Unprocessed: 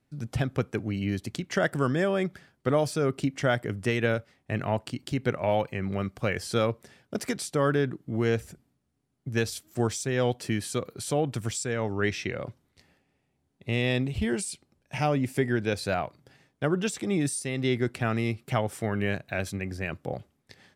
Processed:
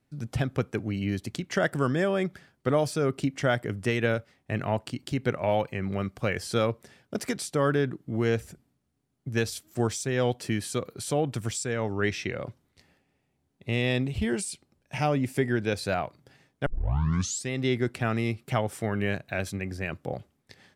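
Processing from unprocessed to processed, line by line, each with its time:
16.66 s: tape start 0.84 s

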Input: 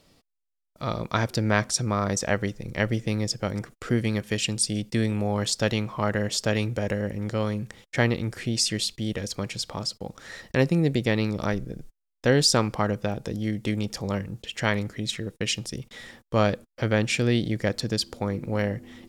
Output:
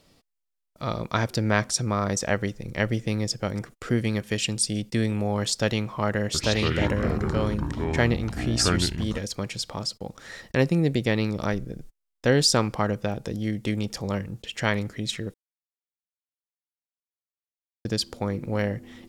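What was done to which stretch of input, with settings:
6.25–9.18 s: ever faster or slower copies 90 ms, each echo -5 st, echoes 3
15.34–17.85 s: mute

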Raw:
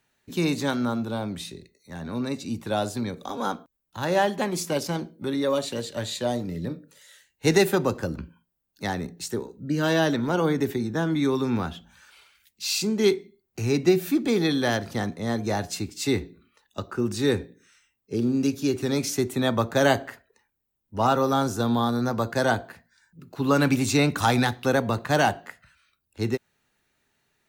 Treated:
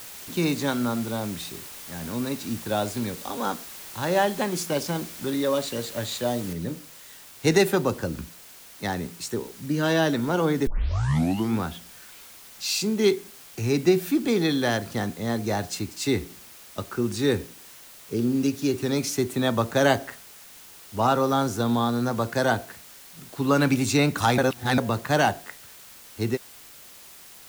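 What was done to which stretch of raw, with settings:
6.53 s: noise floor step -41 dB -47 dB
10.67 s: tape start 0.90 s
24.38–24.78 s: reverse

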